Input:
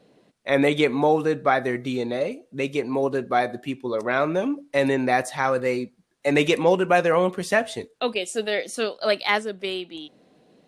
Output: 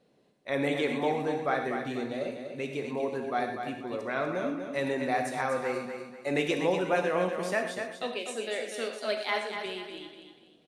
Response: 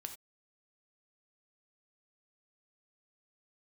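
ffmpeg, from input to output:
-filter_complex "[0:a]asettb=1/sr,asplit=3[s0][s1][s2];[s0]atrim=end=7.374[s3];[s1]atrim=start=7.37:end=9.66,asetpts=PTS-STARTPTS,afade=t=in:d=0.004:c=qsin,afade=t=out:st=2.286:d=0.004:c=qsin,highpass=190[s4];[s2]atrim=start=9.656[s5];[s3][s4]acrossfade=d=0.004:c1=hsin:c2=qsin[s6];[s6][s5]acrossfade=d=0.004:c1=qsin:c2=hsin,aecho=1:1:244|488|732|976:0.447|0.156|0.0547|0.0192[s7];[1:a]atrim=start_sample=2205,asetrate=32193,aresample=44100[s8];[s7][s8]afir=irnorm=-1:irlink=0,volume=0.447"

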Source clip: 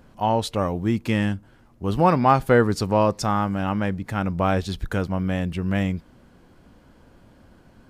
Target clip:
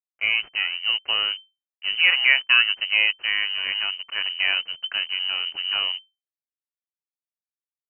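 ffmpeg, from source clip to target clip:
-af "aeval=exprs='sgn(val(0))*max(abs(val(0))-0.0237,0)':c=same,lowpass=f=2600:t=q:w=0.5098,lowpass=f=2600:t=q:w=0.6013,lowpass=f=2600:t=q:w=0.9,lowpass=f=2600:t=q:w=2.563,afreqshift=-3100"

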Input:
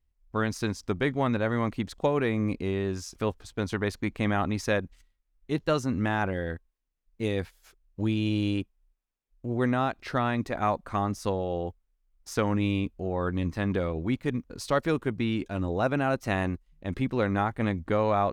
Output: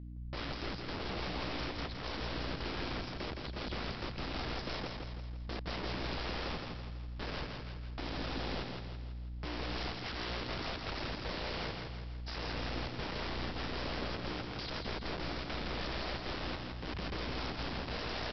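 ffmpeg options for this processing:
-filter_complex "[0:a]afwtdn=0.0398,equalizer=f=440:w=6.1:g=-4.5,asplit=2[s0][s1];[s1]alimiter=limit=0.075:level=0:latency=1:release=10,volume=0.794[s2];[s0][s2]amix=inputs=2:normalize=0,acompressor=threshold=0.00631:ratio=2.5,aeval=exprs='(tanh(251*val(0)+0.35)-tanh(0.35))/251':c=same,aeval=exprs='val(0)+0.000794*(sin(2*PI*60*n/s)+sin(2*PI*2*60*n/s)/2+sin(2*PI*3*60*n/s)/3+sin(2*PI*4*60*n/s)/4+sin(2*PI*5*60*n/s)/5)':c=same,aresample=11025,aeval=exprs='(mod(473*val(0)+1,2)-1)/473':c=same,aresample=44100,aecho=1:1:165|330|495|660|825|990:0.596|0.292|0.143|0.0701|0.0343|0.0168,volume=7.5"

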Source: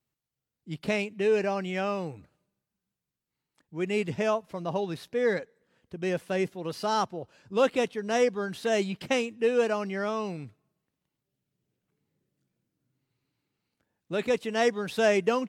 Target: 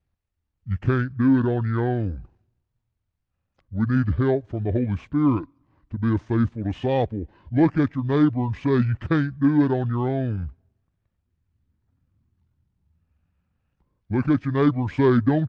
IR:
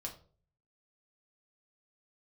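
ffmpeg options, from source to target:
-af "aemphasis=mode=reproduction:type=bsi,acontrast=82,asetrate=26990,aresample=44100,atempo=1.63392,volume=0.75"

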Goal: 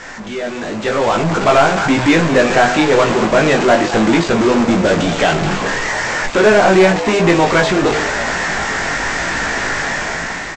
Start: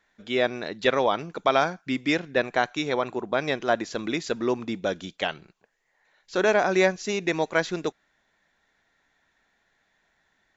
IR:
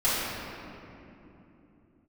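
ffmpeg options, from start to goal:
-filter_complex "[0:a]aeval=exprs='val(0)+0.5*0.0708*sgn(val(0))':c=same,lowpass=2600,bandreject=f=50.05:t=h:w=4,bandreject=f=100.1:t=h:w=4,bandreject=f=150.15:t=h:w=4,bandreject=f=200.2:t=h:w=4,bandreject=f=250.25:t=h:w=4,bandreject=f=300.3:t=h:w=4,bandreject=f=350.35:t=h:w=4,bandreject=f=400.4:t=h:w=4,bandreject=f=450.45:t=h:w=4,bandreject=f=500.5:t=h:w=4,bandreject=f=550.55:t=h:w=4,bandreject=f=600.6:t=h:w=4,bandreject=f=650.65:t=h:w=4,bandreject=f=700.7:t=h:w=4,bandreject=f=750.75:t=h:w=4,bandreject=f=800.8:t=h:w=4,bandreject=f=850.85:t=h:w=4,bandreject=f=900.9:t=h:w=4,bandreject=f=950.95:t=h:w=4,bandreject=f=1001:t=h:w=4,bandreject=f=1051.05:t=h:w=4,bandreject=f=1101.1:t=h:w=4,bandreject=f=1151.15:t=h:w=4,aresample=16000,acrusher=bits=4:mix=0:aa=0.5,aresample=44100,flanger=delay=17.5:depth=3.3:speed=0.96,asoftclip=type=tanh:threshold=0.126,dynaudnorm=f=420:g=5:m=4.22,asplit=2[s0][s1];[s1]asplit=7[s2][s3][s4][s5][s6][s7][s8];[s2]adelay=214,afreqshift=120,volume=0.211[s9];[s3]adelay=428,afreqshift=240,volume=0.135[s10];[s4]adelay=642,afreqshift=360,volume=0.0861[s11];[s5]adelay=856,afreqshift=480,volume=0.0556[s12];[s6]adelay=1070,afreqshift=600,volume=0.0355[s13];[s7]adelay=1284,afreqshift=720,volume=0.0226[s14];[s8]adelay=1498,afreqshift=840,volume=0.0145[s15];[s9][s10][s11][s12][s13][s14][s15]amix=inputs=7:normalize=0[s16];[s0][s16]amix=inputs=2:normalize=0,volume=1.33"

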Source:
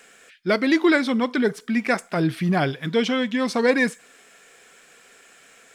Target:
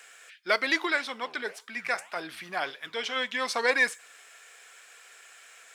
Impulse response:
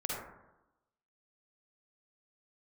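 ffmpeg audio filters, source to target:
-filter_complex "[0:a]highpass=790,asplit=3[s0][s1][s2];[s0]afade=t=out:st=0.85:d=0.02[s3];[s1]flanger=delay=5:depth=9:regen=87:speed=1.8:shape=sinusoidal,afade=t=in:st=0.85:d=0.02,afade=t=out:st=3.15:d=0.02[s4];[s2]afade=t=in:st=3.15:d=0.02[s5];[s3][s4][s5]amix=inputs=3:normalize=0"

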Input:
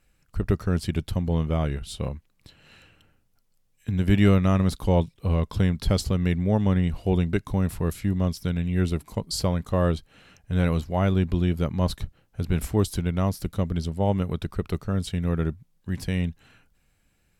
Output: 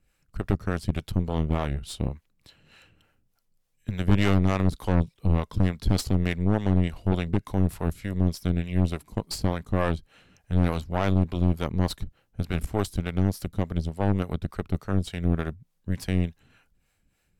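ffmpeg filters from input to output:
-filter_complex "[0:a]acrossover=split=420[s0][s1];[s0]aeval=exprs='val(0)*(1-0.7/2+0.7/2*cos(2*PI*3.4*n/s))':c=same[s2];[s1]aeval=exprs='val(0)*(1-0.7/2-0.7/2*cos(2*PI*3.4*n/s))':c=same[s3];[s2][s3]amix=inputs=2:normalize=0,aeval=exprs='0.376*(cos(1*acos(clip(val(0)/0.376,-1,1)))-cos(1*PI/2))+0.0473*(cos(8*acos(clip(val(0)/0.376,-1,1)))-cos(8*PI/2))':c=same"

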